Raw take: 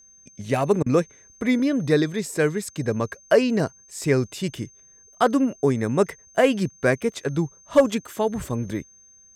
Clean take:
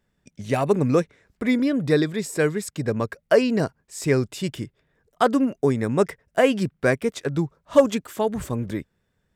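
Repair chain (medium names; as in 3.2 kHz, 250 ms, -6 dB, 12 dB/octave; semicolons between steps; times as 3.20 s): clip repair -7.5 dBFS; band-stop 6.3 kHz, Q 30; interpolate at 0.83 s, 31 ms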